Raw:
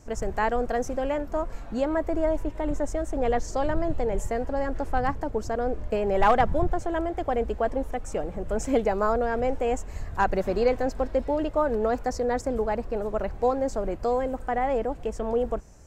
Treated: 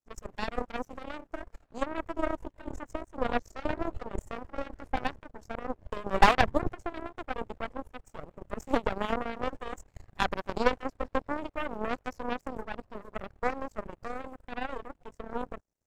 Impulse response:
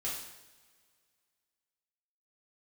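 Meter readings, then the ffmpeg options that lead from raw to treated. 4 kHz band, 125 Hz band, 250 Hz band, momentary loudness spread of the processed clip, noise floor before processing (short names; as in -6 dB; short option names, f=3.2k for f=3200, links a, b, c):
+3.5 dB, -8.0 dB, -7.0 dB, 14 LU, -39 dBFS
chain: -af "aeval=exprs='sgn(val(0))*max(abs(val(0))-0.00376,0)':c=same,aeval=exprs='0.266*(cos(1*acos(clip(val(0)/0.266,-1,1)))-cos(1*PI/2))+0.106*(cos(2*acos(clip(val(0)/0.266,-1,1)))-cos(2*PI/2))+0.0841*(cos(3*acos(clip(val(0)/0.266,-1,1)))-cos(3*PI/2))':c=same"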